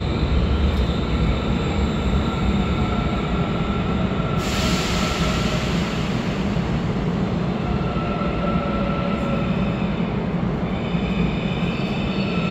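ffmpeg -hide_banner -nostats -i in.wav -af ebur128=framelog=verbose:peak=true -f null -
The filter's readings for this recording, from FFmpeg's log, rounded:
Integrated loudness:
  I:         -22.1 LUFS
  Threshold: -32.1 LUFS
Loudness range:
  LRA:         1.2 LU
  Threshold: -42.2 LUFS
  LRA low:   -22.7 LUFS
  LRA high:  -21.6 LUFS
True peak:
  Peak:       -8.0 dBFS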